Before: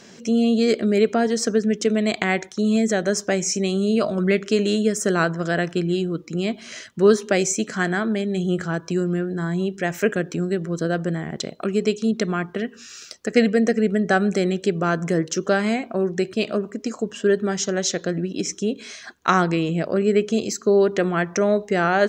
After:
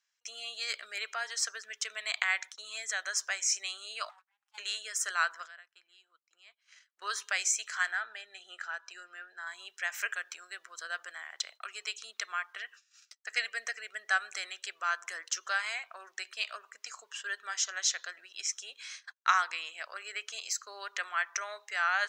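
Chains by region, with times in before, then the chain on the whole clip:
4.09–4.58 minimum comb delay 5.6 ms + compressor 2.5:1, threshold -32 dBFS + ladder high-pass 720 Hz, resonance 55%
5.45–7.02 high shelf 5900 Hz -5.5 dB + compressor 8:1, threshold -35 dBFS
7.91–9.47 LPF 3300 Hz 6 dB/oct + notch comb 1100 Hz
whole clip: gate -37 dBFS, range -28 dB; HPF 1100 Hz 24 dB/oct; gain -4.5 dB

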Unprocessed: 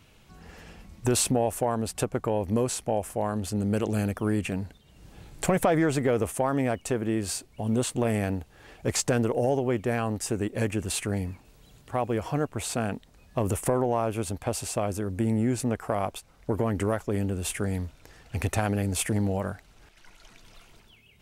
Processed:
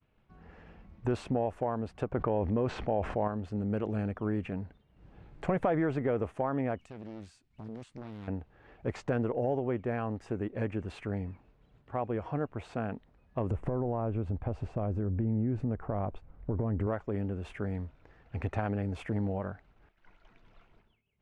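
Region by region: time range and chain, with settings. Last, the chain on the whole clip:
2.12–3.28 LPF 4600 Hz + fast leveller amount 70%
6.79–8.28 EQ curve 230 Hz 0 dB, 470 Hz -11 dB, 8300 Hz +14 dB + compressor 3:1, threshold -35 dBFS + Doppler distortion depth 0.84 ms
13.51–16.87 tilt -3 dB/oct + compressor 3:1, threshold -23 dBFS
whole clip: LPF 1900 Hz 12 dB/oct; expander -51 dBFS; gain -5.5 dB

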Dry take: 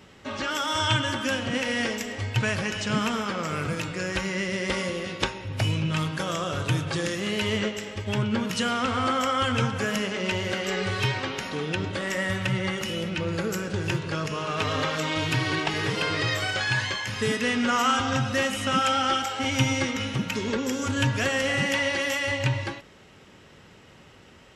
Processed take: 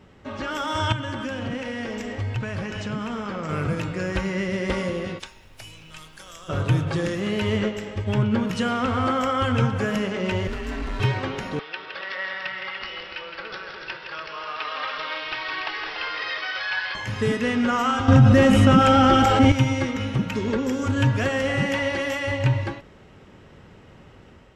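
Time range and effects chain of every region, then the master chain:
0.92–3.49 LPF 9300 Hz + compressor 5:1, threshold -28 dBFS
5.18–6.48 pre-emphasis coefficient 0.97 + added noise pink -58 dBFS
10.47–11 tube stage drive 29 dB, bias 0.75 + frequency shift -140 Hz
11.59–16.95 HPF 1100 Hz + tapped delay 0.164/0.29 s -6.5/-7 dB + careless resampling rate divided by 4×, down none, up filtered
18.08–19.52 low shelf 470 Hz +10 dB + fast leveller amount 70%
whole clip: low shelf 63 Hz +9 dB; AGC gain up to 3.5 dB; high shelf 2300 Hz -11 dB

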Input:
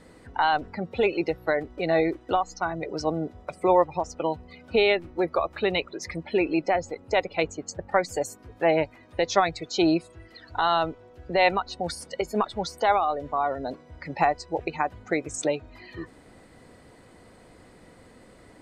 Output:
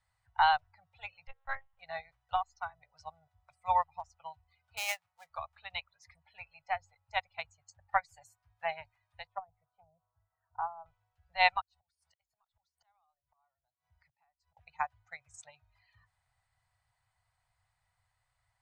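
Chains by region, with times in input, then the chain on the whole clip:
1.27–1.79 notches 60/120/180/240/300/360/420/480 Hz + monotone LPC vocoder at 8 kHz 270 Hz
4.77–5.3 switching dead time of 0.081 ms + HPF 250 Hz
9.27–10.86 treble ducked by the level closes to 520 Hz, closed at -17 dBFS + LPF 1200 Hz 24 dB/oct + low shelf 190 Hz -8.5 dB
11.61–14.57 flipped gate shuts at -25 dBFS, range -27 dB + compressor 2.5:1, threshold -45 dBFS
whole clip: Chebyshev band-stop 120–780 Hz, order 3; bell 93 Hz +3.5 dB 0.3 oct; upward expander 2.5:1, over -36 dBFS

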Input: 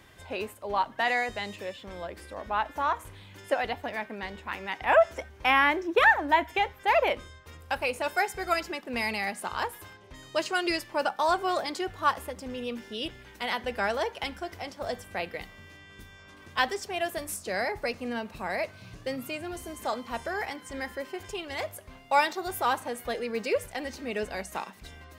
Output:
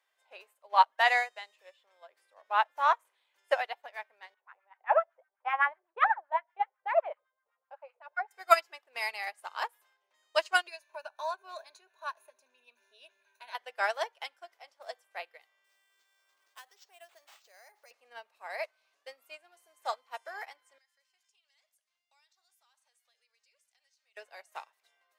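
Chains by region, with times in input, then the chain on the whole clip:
4.34–8.31 high shelf 4400 Hz -7.5 dB + LFO band-pass sine 7.9 Hz 500–1600 Hz
10.67–13.55 ripple EQ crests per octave 1.5, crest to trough 15 dB + compressor 2:1, threshold -35 dBFS
15.64–17.91 bell 6100 Hz +8 dB 1.1 oct + compressor 3:1, threshold -37 dBFS + careless resampling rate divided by 4×, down none, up hold
20.78–24.17 band-pass 5900 Hz, Q 1.2 + compressor 3:1, threshold -48 dBFS
whole clip: HPF 580 Hz 24 dB/oct; upward expander 2.5:1, over -42 dBFS; gain +7.5 dB

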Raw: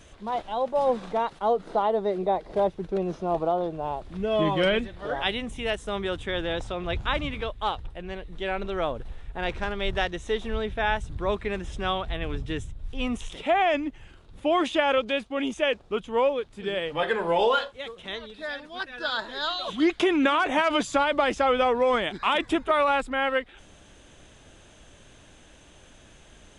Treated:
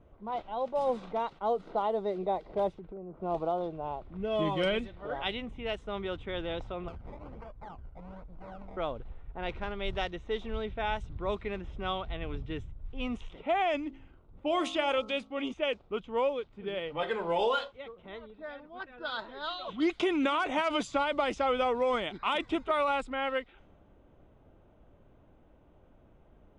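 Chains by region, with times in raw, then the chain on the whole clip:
2.71–3.21 treble ducked by the level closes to 1400 Hz, closed at -26 dBFS + compressor 3:1, threshold -37 dBFS
6.88–8.77 minimum comb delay 1.3 ms + compressor 4:1, threshold -35 dBFS + decimation with a swept rate 21× 1.2 Hz
13.87–15.53 high shelf 5900 Hz +8.5 dB + de-hum 53.82 Hz, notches 25
whole clip: notch 1700 Hz, Q 7.2; low-pass opened by the level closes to 900 Hz, open at -19 dBFS; gain -6 dB

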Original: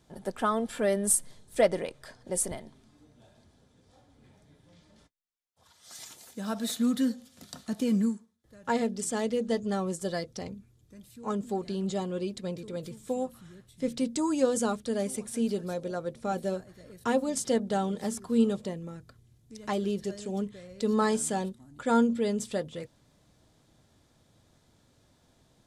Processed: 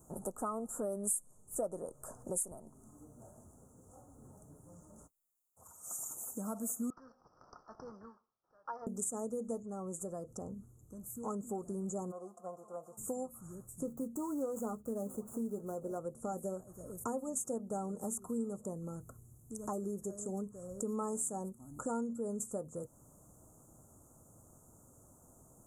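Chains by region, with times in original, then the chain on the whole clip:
6.9–8.87 HPF 1400 Hz + careless resampling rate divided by 4×, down none, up filtered
9.62–11.06 compressor 1.5:1, threshold -48 dBFS + high shelf 9500 Hz -10.5 dB
12.1–12.97 spectral whitening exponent 0.6 + vowel filter a + comb 5.8 ms, depth 79%
13.84–15.99 median filter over 15 samples + doubler 14 ms -9.5 dB
whole clip: Chebyshev band-stop 1300–6800 Hz, order 4; high shelf 4900 Hz +11.5 dB; compressor 3:1, threshold -43 dBFS; gain +3 dB

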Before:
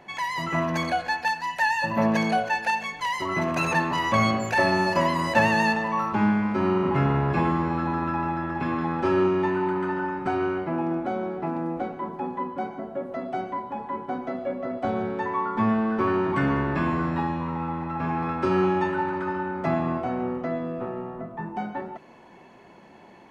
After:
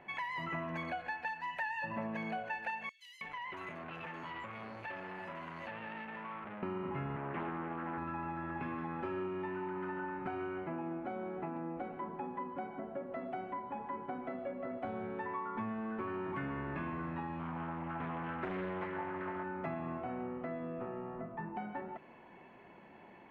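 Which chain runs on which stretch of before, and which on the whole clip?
2.89–6.63 bands offset in time highs, lows 0.32 s, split 3700 Hz + compressor, threshold -32 dBFS + core saturation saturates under 1400 Hz
7.16–7.98 BPF 190–2600 Hz + Doppler distortion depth 0.42 ms
17.39–19.44 LPF 7800 Hz + Doppler distortion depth 0.57 ms
whole clip: compressor 4:1, threshold -31 dBFS; resonant high shelf 3700 Hz -12 dB, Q 1.5; gain -7 dB

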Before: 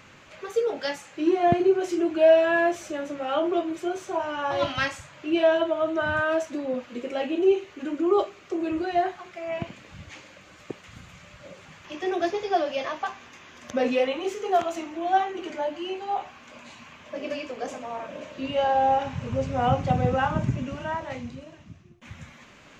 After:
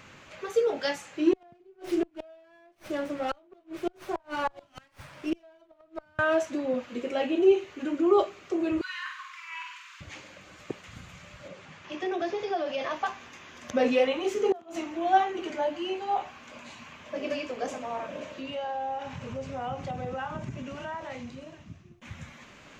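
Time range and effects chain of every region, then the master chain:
1.33–6.19 flipped gate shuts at -18 dBFS, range -35 dB + running maximum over 5 samples
8.81–10.01 brick-wall FIR high-pass 920 Hz + flutter echo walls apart 8.2 m, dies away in 0.66 s
11.48–12.91 air absorption 55 m + compressor 3:1, threshold -27 dBFS + HPF 91 Hz
14.35–14.76 bell 270 Hz +10 dB 1.7 oct + flipped gate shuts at -15 dBFS, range -27 dB
18.34–21.42 low shelf 210 Hz -7.5 dB + compressor 2.5:1, threshold -35 dBFS
whole clip: dry

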